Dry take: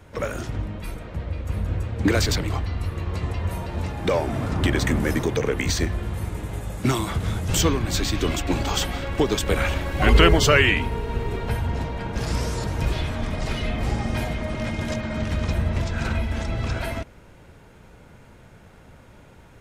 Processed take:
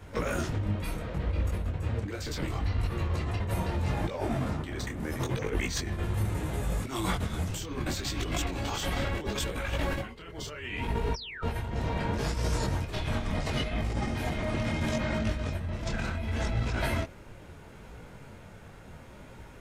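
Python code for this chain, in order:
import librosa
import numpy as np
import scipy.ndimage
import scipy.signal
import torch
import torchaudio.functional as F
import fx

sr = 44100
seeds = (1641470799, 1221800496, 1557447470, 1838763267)

y = fx.spec_paint(x, sr, seeds[0], shape='fall', start_s=11.14, length_s=0.28, low_hz=1200.0, high_hz=5900.0, level_db=-14.0)
y = fx.over_compress(y, sr, threshold_db=-28.0, ratio=-1.0)
y = fx.detune_double(y, sr, cents=25)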